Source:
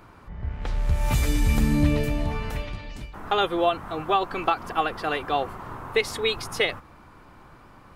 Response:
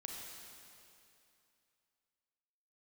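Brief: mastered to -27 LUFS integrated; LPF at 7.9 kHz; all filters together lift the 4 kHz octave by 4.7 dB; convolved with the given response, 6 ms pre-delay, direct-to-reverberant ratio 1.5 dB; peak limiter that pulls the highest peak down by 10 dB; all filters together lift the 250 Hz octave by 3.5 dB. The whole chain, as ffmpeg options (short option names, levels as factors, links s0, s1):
-filter_complex "[0:a]lowpass=7900,equalizer=f=250:t=o:g=4.5,equalizer=f=4000:t=o:g=6,alimiter=limit=0.15:level=0:latency=1,asplit=2[s0][s1];[1:a]atrim=start_sample=2205,adelay=6[s2];[s1][s2]afir=irnorm=-1:irlink=0,volume=1.06[s3];[s0][s3]amix=inputs=2:normalize=0,volume=0.944"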